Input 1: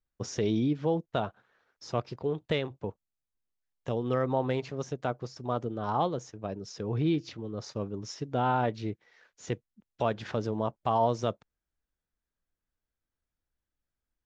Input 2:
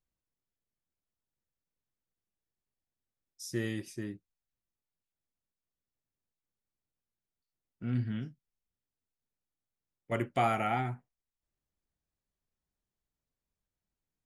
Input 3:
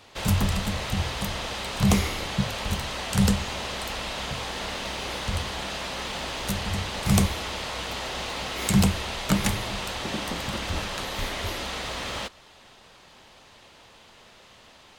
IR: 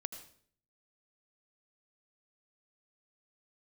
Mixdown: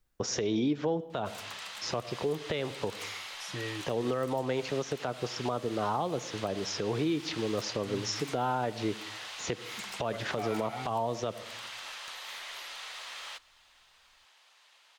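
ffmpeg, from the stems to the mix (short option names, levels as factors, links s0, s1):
-filter_complex "[0:a]acontrast=62,volume=1.19,asplit=2[s0][s1];[s1]volume=0.422[s2];[1:a]aecho=1:1:6.9:0.82,volume=0.708[s3];[2:a]highpass=1100,aeval=exprs='0.0668*(abs(mod(val(0)/0.0668+3,4)-2)-1)':c=same,adelay=1100,volume=0.398[s4];[3:a]atrim=start_sample=2205[s5];[s2][s5]afir=irnorm=-1:irlink=0[s6];[s0][s3][s4][s6]amix=inputs=4:normalize=0,acrossover=split=300|7600[s7][s8][s9];[s7]acompressor=threshold=0.01:ratio=4[s10];[s8]acompressor=threshold=0.0398:ratio=4[s11];[s9]acompressor=threshold=0.00141:ratio=4[s12];[s10][s11][s12]amix=inputs=3:normalize=0,alimiter=limit=0.0944:level=0:latency=1:release=135"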